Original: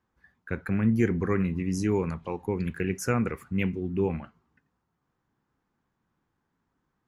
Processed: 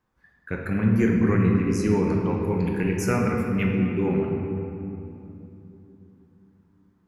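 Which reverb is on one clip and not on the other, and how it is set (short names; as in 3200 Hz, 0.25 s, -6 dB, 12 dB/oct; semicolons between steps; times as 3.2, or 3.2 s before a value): shoebox room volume 130 m³, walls hard, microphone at 0.45 m; gain +1 dB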